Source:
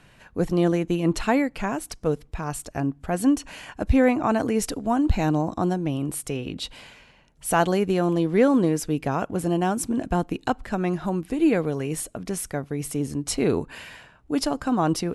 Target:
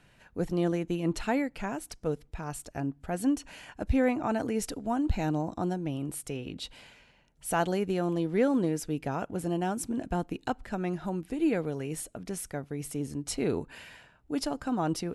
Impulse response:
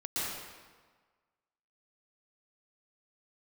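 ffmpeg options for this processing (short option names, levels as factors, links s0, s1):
-af "bandreject=f=1100:w=12,volume=0.447"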